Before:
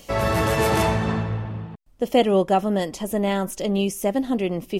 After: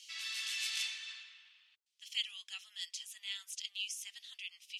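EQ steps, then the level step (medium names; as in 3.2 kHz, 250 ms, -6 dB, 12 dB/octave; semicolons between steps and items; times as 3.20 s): inverse Chebyshev high-pass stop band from 510 Hz, stop band 80 dB; distance through air 80 m; 0.0 dB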